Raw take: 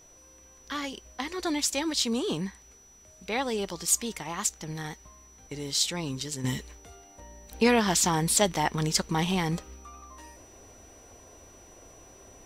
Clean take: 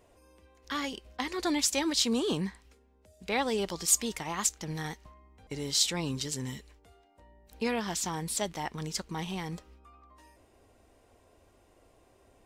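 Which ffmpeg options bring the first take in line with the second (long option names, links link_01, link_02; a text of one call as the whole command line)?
ffmpeg -i in.wav -af "bandreject=frequency=5900:width=30,agate=range=-21dB:threshold=-46dB,asetnsamples=nb_out_samples=441:pad=0,asendcmd='6.44 volume volume -9dB',volume=0dB" out.wav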